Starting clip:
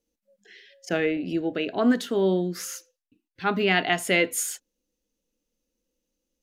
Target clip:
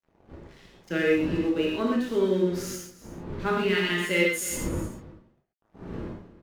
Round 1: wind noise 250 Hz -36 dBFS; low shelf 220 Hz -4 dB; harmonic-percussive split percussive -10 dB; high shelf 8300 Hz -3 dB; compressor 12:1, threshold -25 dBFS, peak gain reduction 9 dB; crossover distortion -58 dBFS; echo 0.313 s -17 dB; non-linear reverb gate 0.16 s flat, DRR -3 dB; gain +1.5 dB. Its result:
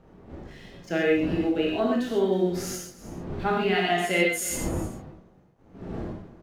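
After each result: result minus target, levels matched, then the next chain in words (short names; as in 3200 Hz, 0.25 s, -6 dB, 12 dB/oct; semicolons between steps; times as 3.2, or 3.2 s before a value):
crossover distortion: distortion -9 dB; 1000 Hz band +5.0 dB
wind noise 250 Hz -36 dBFS; low shelf 220 Hz -4 dB; harmonic-percussive split percussive -10 dB; high shelf 8300 Hz -3 dB; compressor 12:1, threshold -25 dBFS, peak gain reduction 9 dB; crossover distortion -47.5 dBFS; echo 0.313 s -17 dB; non-linear reverb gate 0.16 s flat, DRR -3 dB; gain +1.5 dB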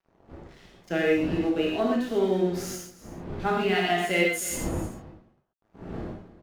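1000 Hz band +5.0 dB
wind noise 250 Hz -36 dBFS; low shelf 220 Hz -4 dB; harmonic-percussive split percussive -10 dB; Butterworth band-stop 720 Hz, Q 3; high shelf 8300 Hz -3 dB; compressor 12:1, threshold -25 dBFS, peak gain reduction 9 dB; crossover distortion -47.5 dBFS; echo 0.313 s -17 dB; non-linear reverb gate 0.16 s flat, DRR -3 dB; gain +1.5 dB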